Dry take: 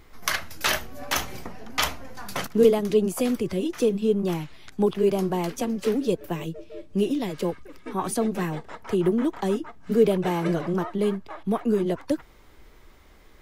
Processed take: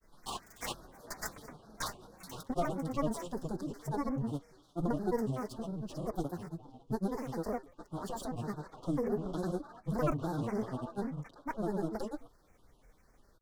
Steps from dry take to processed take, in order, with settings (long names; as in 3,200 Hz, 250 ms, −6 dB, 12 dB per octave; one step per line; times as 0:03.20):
lower of the sound and its delayed copy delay 5.6 ms
elliptic band-stop filter 1,600–4,100 Hz, stop band 40 dB
hum removal 120.7 Hz, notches 32
granular cloud 100 ms, grains 20 per second, pitch spread up and down by 7 semitones
level −8 dB